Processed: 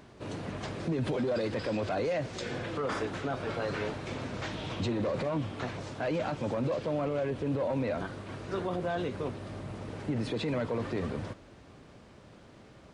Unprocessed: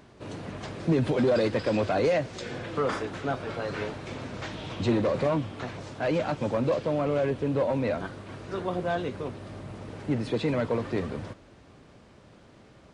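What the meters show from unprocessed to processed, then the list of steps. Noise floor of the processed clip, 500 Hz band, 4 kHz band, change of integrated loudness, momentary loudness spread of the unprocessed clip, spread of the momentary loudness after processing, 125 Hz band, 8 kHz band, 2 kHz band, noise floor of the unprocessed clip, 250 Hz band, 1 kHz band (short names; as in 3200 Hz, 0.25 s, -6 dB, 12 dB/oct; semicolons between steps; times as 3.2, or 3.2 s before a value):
-54 dBFS, -5.0 dB, -2.0 dB, -4.5 dB, 14 LU, 8 LU, -3.5 dB, n/a, -3.0 dB, -54 dBFS, -4.5 dB, -4.0 dB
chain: limiter -23.5 dBFS, peak gain reduction 8.5 dB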